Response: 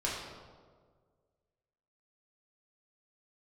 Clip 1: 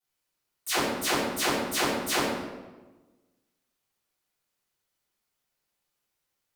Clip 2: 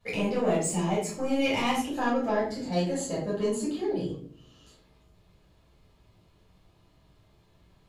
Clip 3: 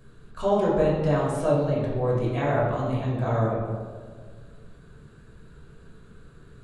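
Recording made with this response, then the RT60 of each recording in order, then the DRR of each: 3; 1.2, 0.55, 1.7 seconds; −15.5, −8.5, −6.0 decibels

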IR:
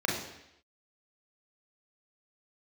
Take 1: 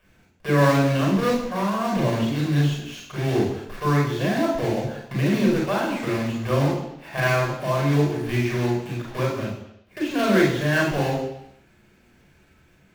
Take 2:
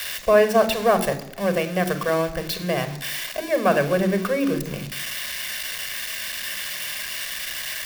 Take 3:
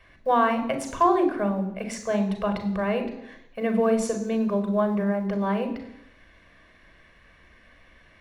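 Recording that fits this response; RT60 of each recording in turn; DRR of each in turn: 1; 0.80, 0.80, 0.80 seconds; −2.0, 10.0, 6.0 decibels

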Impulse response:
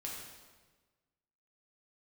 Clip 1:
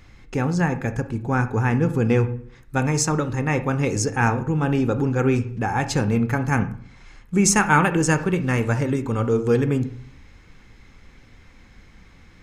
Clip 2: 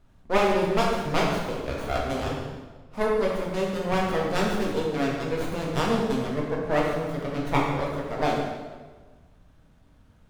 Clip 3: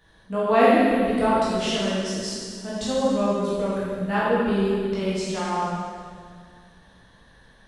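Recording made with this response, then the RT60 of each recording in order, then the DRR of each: 2; 0.55, 1.4, 2.0 seconds; 10.0, −3.5, −9.0 decibels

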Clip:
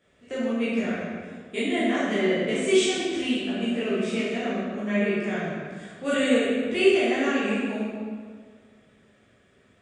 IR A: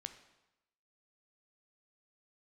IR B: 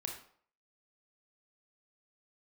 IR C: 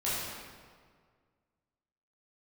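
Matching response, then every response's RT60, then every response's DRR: C; 0.95, 0.55, 1.8 seconds; 8.5, 1.5, −10.0 decibels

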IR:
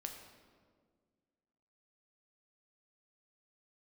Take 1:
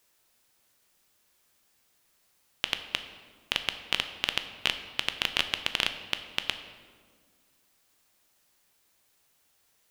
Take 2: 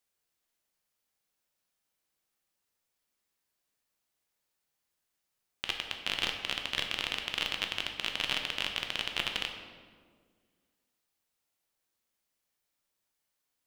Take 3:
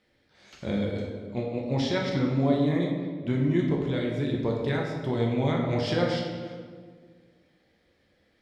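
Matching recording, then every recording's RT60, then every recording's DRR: 2; 1.8, 1.8, 1.7 seconds; 8.0, 3.0, −1.5 decibels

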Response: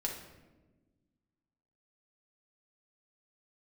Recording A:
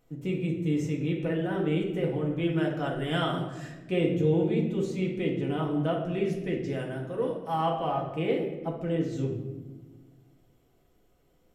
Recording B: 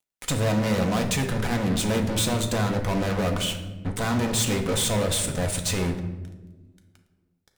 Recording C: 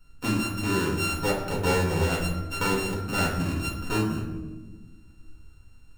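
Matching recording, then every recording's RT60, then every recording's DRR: A; 1.2, 1.2, 1.2 seconds; −1.5, 3.5, −6.0 decibels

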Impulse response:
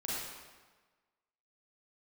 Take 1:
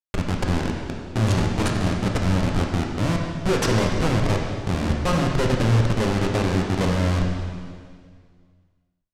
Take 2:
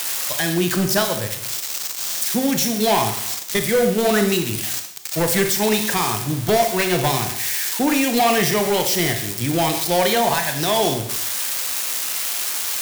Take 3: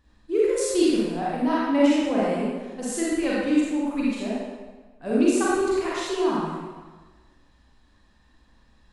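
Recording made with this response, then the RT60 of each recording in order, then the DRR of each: 3; 1.9, 0.70, 1.3 seconds; 0.0, 5.5, −7.5 decibels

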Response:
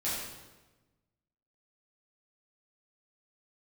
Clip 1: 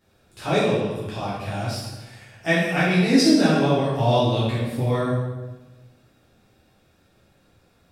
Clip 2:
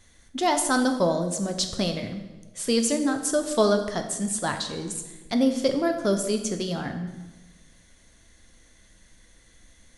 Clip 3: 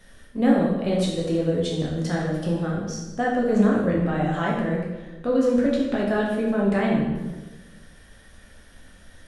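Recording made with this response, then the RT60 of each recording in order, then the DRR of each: 1; 1.2, 1.2, 1.2 seconds; −10.0, 5.5, −4.0 decibels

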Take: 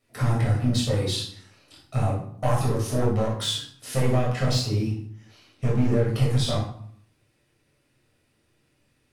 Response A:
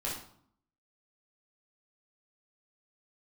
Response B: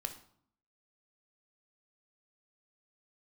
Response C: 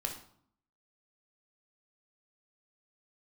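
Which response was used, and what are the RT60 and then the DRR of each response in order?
A; 0.60, 0.60, 0.60 seconds; −6.0, 6.5, 2.0 decibels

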